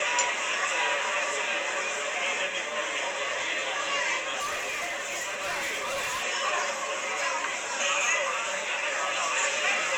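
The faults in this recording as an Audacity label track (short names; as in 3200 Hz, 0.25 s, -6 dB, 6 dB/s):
4.390000	6.240000	clipped -28 dBFS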